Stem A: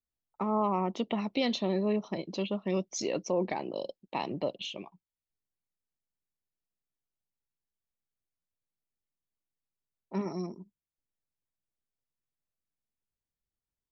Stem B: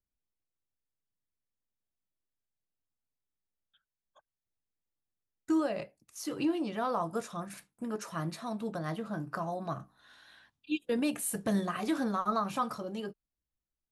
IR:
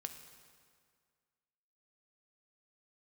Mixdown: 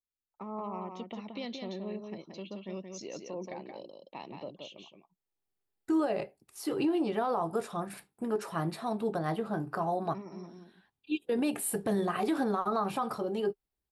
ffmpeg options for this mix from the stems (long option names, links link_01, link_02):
-filter_complex "[0:a]volume=-10.5dB,asplit=3[link_01][link_02][link_03];[link_02]volume=-5.5dB[link_04];[1:a]equalizer=frequency=400:width_type=o:width=0.33:gain=11,equalizer=frequency=800:width_type=o:width=0.33:gain=8,equalizer=frequency=6300:width_type=o:width=0.33:gain=-10,adelay=400,volume=1.5dB[link_05];[link_03]apad=whole_len=631483[link_06];[link_05][link_06]sidechaincompress=threshold=-58dB:ratio=8:attack=20:release=740[link_07];[link_04]aecho=0:1:175:1[link_08];[link_01][link_07][link_08]amix=inputs=3:normalize=0,alimiter=limit=-21.5dB:level=0:latency=1:release=65"